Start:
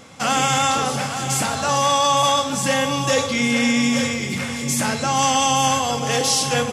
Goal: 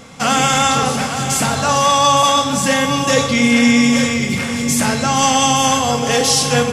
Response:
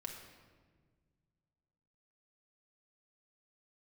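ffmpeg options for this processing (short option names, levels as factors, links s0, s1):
-filter_complex "[0:a]asplit=2[s0][s1];[1:a]atrim=start_sample=2205,lowshelf=f=160:g=10[s2];[s1][s2]afir=irnorm=-1:irlink=0,volume=1.06[s3];[s0][s3]amix=inputs=2:normalize=0"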